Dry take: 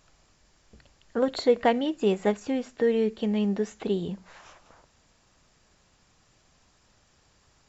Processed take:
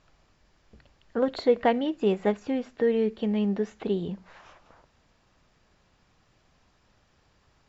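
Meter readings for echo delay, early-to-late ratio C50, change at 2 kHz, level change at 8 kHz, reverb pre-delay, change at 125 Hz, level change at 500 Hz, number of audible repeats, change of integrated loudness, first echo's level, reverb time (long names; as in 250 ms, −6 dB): no echo audible, no reverb audible, −1.5 dB, can't be measured, no reverb audible, 0.0 dB, −0.5 dB, no echo audible, −0.5 dB, no echo audible, no reverb audible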